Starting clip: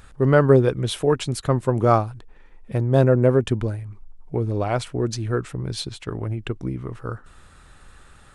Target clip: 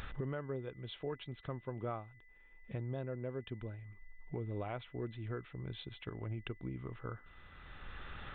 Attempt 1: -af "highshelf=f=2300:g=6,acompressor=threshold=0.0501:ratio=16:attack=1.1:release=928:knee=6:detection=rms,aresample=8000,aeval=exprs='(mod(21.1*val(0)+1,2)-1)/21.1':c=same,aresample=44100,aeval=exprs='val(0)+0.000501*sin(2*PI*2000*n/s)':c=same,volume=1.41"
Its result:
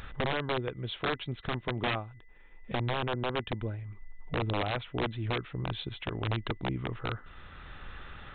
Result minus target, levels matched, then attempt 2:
compression: peak gain reduction -9.5 dB
-af "highshelf=f=2300:g=6,acompressor=threshold=0.0158:ratio=16:attack=1.1:release=928:knee=6:detection=rms,aresample=8000,aeval=exprs='(mod(21.1*val(0)+1,2)-1)/21.1':c=same,aresample=44100,aeval=exprs='val(0)+0.000501*sin(2*PI*2000*n/s)':c=same,volume=1.41"

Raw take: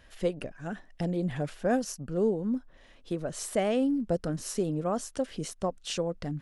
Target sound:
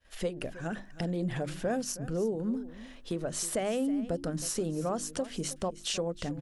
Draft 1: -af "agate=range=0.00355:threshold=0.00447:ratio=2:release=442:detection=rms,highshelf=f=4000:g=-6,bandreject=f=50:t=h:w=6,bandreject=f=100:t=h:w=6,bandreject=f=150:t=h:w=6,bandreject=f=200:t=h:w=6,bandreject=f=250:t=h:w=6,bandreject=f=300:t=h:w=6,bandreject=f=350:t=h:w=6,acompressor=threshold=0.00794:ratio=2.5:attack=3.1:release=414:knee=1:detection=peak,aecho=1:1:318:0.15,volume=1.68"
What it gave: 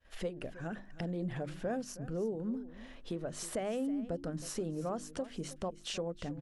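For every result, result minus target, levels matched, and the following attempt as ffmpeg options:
compression: peak gain reduction +4.5 dB; 8 kHz band -4.5 dB
-af "agate=range=0.00355:threshold=0.00447:ratio=2:release=442:detection=rms,highshelf=f=4000:g=-6,bandreject=f=50:t=h:w=6,bandreject=f=100:t=h:w=6,bandreject=f=150:t=h:w=6,bandreject=f=200:t=h:w=6,bandreject=f=250:t=h:w=6,bandreject=f=300:t=h:w=6,bandreject=f=350:t=h:w=6,acompressor=threshold=0.02:ratio=2.5:attack=3.1:release=414:knee=1:detection=peak,aecho=1:1:318:0.15,volume=1.68"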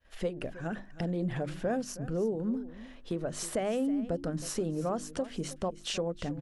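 8 kHz band -4.5 dB
-af "agate=range=0.00355:threshold=0.00447:ratio=2:release=442:detection=rms,highshelf=f=4000:g=3.5,bandreject=f=50:t=h:w=6,bandreject=f=100:t=h:w=6,bandreject=f=150:t=h:w=6,bandreject=f=200:t=h:w=6,bandreject=f=250:t=h:w=6,bandreject=f=300:t=h:w=6,bandreject=f=350:t=h:w=6,acompressor=threshold=0.02:ratio=2.5:attack=3.1:release=414:knee=1:detection=peak,aecho=1:1:318:0.15,volume=1.68"

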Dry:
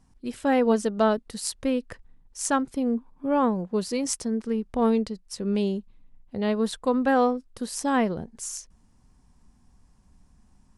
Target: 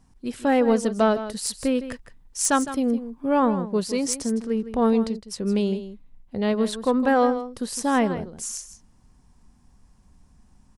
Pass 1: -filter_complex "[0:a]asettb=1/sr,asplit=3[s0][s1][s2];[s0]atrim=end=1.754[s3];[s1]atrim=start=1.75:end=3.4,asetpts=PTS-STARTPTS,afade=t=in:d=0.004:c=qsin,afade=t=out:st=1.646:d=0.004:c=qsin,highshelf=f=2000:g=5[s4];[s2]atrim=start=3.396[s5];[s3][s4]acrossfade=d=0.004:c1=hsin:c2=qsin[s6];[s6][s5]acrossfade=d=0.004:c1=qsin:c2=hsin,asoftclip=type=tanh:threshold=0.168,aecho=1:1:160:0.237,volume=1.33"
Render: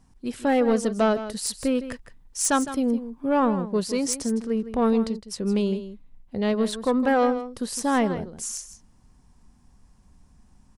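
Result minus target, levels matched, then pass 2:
saturation: distortion +9 dB
-filter_complex "[0:a]asettb=1/sr,asplit=3[s0][s1][s2];[s0]atrim=end=1.754[s3];[s1]atrim=start=1.75:end=3.4,asetpts=PTS-STARTPTS,afade=t=in:d=0.004:c=qsin,afade=t=out:st=1.646:d=0.004:c=qsin,highshelf=f=2000:g=5[s4];[s2]atrim=start=3.396[s5];[s3][s4]acrossfade=d=0.004:c1=hsin:c2=qsin[s6];[s6][s5]acrossfade=d=0.004:c1=qsin:c2=hsin,asoftclip=type=tanh:threshold=0.335,aecho=1:1:160:0.237,volume=1.33"

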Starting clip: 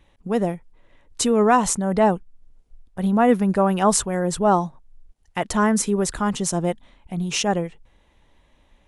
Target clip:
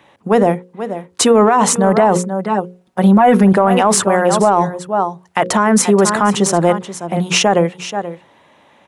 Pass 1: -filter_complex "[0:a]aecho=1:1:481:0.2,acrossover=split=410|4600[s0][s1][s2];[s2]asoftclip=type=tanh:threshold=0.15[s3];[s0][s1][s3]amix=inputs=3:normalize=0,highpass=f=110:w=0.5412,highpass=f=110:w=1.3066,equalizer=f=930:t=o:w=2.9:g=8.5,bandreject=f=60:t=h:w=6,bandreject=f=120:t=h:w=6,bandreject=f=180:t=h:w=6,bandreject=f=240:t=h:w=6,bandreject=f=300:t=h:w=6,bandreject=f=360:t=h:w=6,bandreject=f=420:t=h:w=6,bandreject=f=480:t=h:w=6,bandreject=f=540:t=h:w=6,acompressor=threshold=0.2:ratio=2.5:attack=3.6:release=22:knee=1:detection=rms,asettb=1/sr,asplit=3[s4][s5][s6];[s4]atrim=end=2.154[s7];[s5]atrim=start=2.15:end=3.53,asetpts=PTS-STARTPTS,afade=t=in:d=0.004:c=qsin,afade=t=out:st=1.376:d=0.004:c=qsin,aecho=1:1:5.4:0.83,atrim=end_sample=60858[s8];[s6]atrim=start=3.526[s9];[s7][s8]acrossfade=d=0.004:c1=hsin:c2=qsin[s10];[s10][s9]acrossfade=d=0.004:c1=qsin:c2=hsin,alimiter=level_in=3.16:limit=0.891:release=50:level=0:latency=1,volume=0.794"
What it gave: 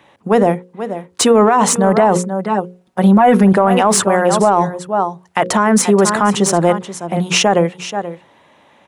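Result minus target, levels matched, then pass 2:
saturation: distortion +8 dB
-filter_complex "[0:a]aecho=1:1:481:0.2,acrossover=split=410|4600[s0][s1][s2];[s2]asoftclip=type=tanh:threshold=0.299[s3];[s0][s1][s3]amix=inputs=3:normalize=0,highpass=f=110:w=0.5412,highpass=f=110:w=1.3066,equalizer=f=930:t=o:w=2.9:g=8.5,bandreject=f=60:t=h:w=6,bandreject=f=120:t=h:w=6,bandreject=f=180:t=h:w=6,bandreject=f=240:t=h:w=6,bandreject=f=300:t=h:w=6,bandreject=f=360:t=h:w=6,bandreject=f=420:t=h:w=6,bandreject=f=480:t=h:w=6,bandreject=f=540:t=h:w=6,acompressor=threshold=0.2:ratio=2.5:attack=3.6:release=22:knee=1:detection=rms,asettb=1/sr,asplit=3[s4][s5][s6];[s4]atrim=end=2.154[s7];[s5]atrim=start=2.15:end=3.53,asetpts=PTS-STARTPTS,afade=t=in:d=0.004:c=qsin,afade=t=out:st=1.376:d=0.004:c=qsin,aecho=1:1:5.4:0.83,atrim=end_sample=60858[s8];[s6]atrim=start=3.526[s9];[s7][s8]acrossfade=d=0.004:c1=hsin:c2=qsin[s10];[s10][s9]acrossfade=d=0.004:c1=qsin:c2=hsin,alimiter=level_in=3.16:limit=0.891:release=50:level=0:latency=1,volume=0.794"

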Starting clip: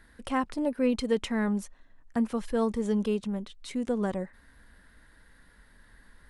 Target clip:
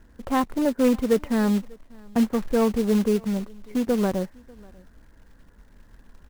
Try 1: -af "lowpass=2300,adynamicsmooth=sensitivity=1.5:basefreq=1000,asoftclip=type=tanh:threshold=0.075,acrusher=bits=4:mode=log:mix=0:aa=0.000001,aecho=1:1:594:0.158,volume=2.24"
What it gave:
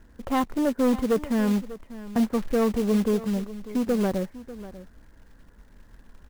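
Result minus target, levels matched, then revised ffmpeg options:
saturation: distortion +11 dB; echo-to-direct +10 dB
-af "lowpass=2300,adynamicsmooth=sensitivity=1.5:basefreq=1000,asoftclip=type=tanh:threshold=0.178,acrusher=bits=4:mode=log:mix=0:aa=0.000001,aecho=1:1:594:0.0501,volume=2.24"

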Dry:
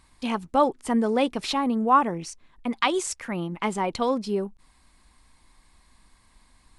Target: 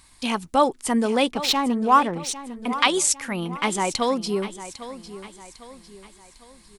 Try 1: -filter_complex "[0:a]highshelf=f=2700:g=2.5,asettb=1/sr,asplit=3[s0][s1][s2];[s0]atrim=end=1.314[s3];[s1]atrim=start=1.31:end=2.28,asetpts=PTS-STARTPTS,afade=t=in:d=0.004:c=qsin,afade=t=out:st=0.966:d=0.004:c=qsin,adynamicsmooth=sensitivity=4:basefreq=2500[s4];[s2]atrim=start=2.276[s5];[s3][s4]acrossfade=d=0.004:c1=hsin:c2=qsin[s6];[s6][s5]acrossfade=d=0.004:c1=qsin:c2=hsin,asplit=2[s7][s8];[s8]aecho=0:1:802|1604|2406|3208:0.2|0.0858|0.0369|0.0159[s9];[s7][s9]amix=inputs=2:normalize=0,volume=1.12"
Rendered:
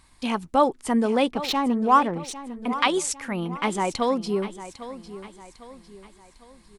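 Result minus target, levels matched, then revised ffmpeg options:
4 kHz band -4.0 dB
-filter_complex "[0:a]highshelf=f=2700:g=11,asettb=1/sr,asplit=3[s0][s1][s2];[s0]atrim=end=1.314[s3];[s1]atrim=start=1.31:end=2.28,asetpts=PTS-STARTPTS,afade=t=in:d=0.004:c=qsin,afade=t=out:st=0.966:d=0.004:c=qsin,adynamicsmooth=sensitivity=4:basefreq=2500[s4];[s2]atrim=start=2.276[s5];[s3][s4]acrossfade=d=0.004:c1=hsin:c2=qsin[s6];[s6][s5]acrossfade=d=0.004:c1=qsin:c2=hsin,asplit=2[s7][s8];[s8]aecho=0:1:802|1604|2406|3208:0.2|0.0858|0.0369|0.0159[s9];[s7][s9]amix=inputs=2:normalize=0,volume=1.12"

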